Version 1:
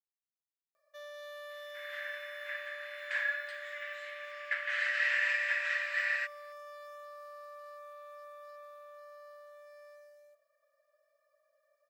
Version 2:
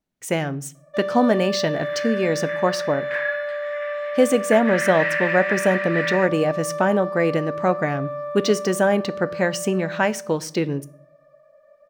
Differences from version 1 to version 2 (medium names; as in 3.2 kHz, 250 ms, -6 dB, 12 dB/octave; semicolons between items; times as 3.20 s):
speech: unmuted; second sound -5.5 dB; master: remove differentiator